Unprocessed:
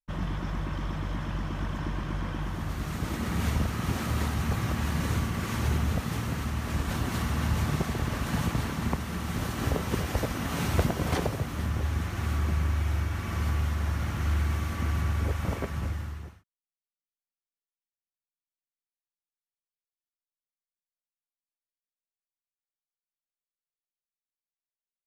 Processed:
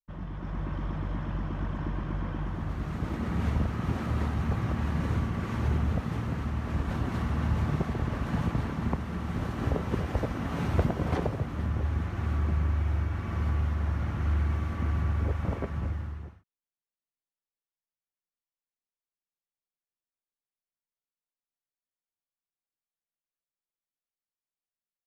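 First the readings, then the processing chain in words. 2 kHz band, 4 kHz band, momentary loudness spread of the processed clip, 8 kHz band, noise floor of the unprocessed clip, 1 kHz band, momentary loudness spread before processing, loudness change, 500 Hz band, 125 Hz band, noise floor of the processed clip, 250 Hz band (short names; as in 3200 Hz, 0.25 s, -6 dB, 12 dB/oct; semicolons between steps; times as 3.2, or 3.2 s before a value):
-4.5 dB, -9.0 dB, 6 LU, under -10 dB, under -85 dBFS, -2.0 dB, 6 LU, -0.5 dB, -0.5 dB, 0.0 dB, under -85 dBFS, 0.0 dB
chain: AGC gain up to 7 dB; LPF 1300 Hz 6 dB/oct; gain -7 dB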